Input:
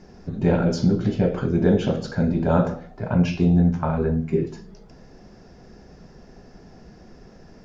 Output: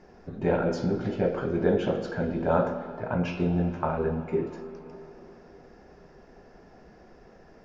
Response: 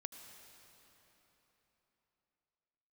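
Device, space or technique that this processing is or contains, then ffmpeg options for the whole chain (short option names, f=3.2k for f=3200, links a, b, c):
filtered reverb send: -filter_complex "[0:a]asplit=2[a][b];[b]highpass=310,lowpass=3k[c];[1:a]atrim=start_sample=2205[d];[c][d]afir=irnorm=-1:irlink=0,volume=6.5dB[e];[a][e]amix=inputs=2:normalize=0,volume=-8.5dB"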